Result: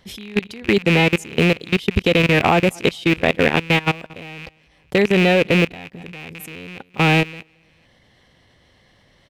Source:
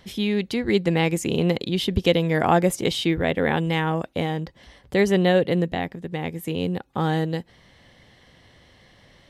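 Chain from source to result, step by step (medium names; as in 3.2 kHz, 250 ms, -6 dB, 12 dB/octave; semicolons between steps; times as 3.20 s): rattle on loud lows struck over -32 dBFS, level -13 dBFS; feedback delay 224 ms, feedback 32%, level -22 dB; level held to a coarse grid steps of 21 dB; trim +7 dB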